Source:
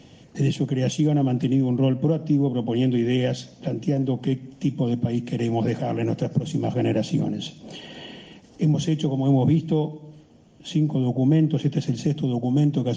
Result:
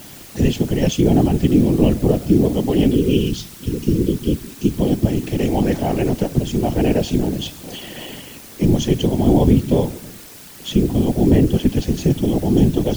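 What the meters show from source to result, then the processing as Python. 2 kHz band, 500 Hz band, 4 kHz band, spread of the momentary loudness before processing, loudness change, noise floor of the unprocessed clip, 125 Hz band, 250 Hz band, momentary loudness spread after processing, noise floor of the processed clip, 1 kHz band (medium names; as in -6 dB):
+5.5 dB, +7.0 dB, +6.0 dB, 11 LU, +5.5 dB, -50 dBFS, +3.5 dB, +5.5 dB, 16 LU, -39 dBFS, +6.0 dB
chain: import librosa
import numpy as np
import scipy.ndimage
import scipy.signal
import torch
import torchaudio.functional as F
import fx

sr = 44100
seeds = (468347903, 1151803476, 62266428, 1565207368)

y = fx.spec_erase(x, sr, start_s=2.94, length_s=1.77, low_hz=420.0, high_hz=2400.0)
y = fx.dmg_noise_colour(y, sr, seeds[0], colour='white', level_db=-46.0)
y = fx.whisperise(y, sr, seeds[1])
y = y * librosa.db_to_amplitude(5.5)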